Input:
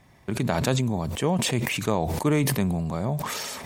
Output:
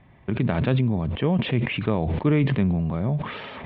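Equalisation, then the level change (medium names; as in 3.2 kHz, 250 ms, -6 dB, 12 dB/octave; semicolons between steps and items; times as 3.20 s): steep low-pass 3.4 kHz 48 dB/octave; dynamic bell 830 Hz, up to -5 dB, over -38 dBFS, Q 1.4; bass shelf 330 Hz +4.5 dB; 0.0 dB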